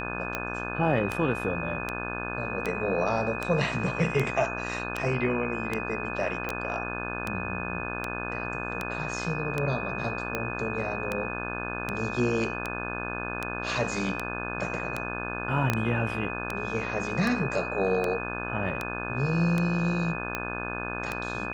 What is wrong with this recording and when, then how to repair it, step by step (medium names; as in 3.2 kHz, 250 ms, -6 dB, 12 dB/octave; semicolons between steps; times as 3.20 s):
buzz 60 Hz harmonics 29 -35 dBFS
tick 78 rpm -14 dBFS
whine 2.5 kHz -35 dBFS
6.49 s: pop -16 dBFS
15.70 s: pop -10 dBFS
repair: de-click; band-stop 2.5 kHz, Q 30; de-hum 60 Hz, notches 29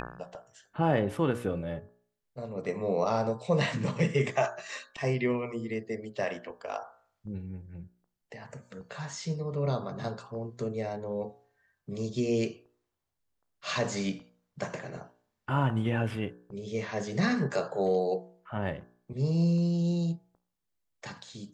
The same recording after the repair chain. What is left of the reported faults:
6.49 s: pop
15.70 s: pop